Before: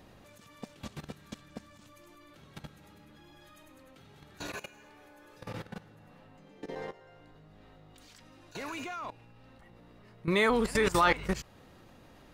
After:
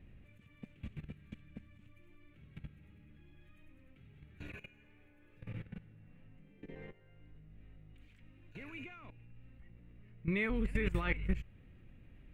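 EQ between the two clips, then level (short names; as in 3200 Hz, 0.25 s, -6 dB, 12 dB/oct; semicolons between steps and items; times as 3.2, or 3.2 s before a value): passive tone stack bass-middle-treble 10-0-1; resonant high shelf 3500 Hz -13.5 dB, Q 3; +12.0 dB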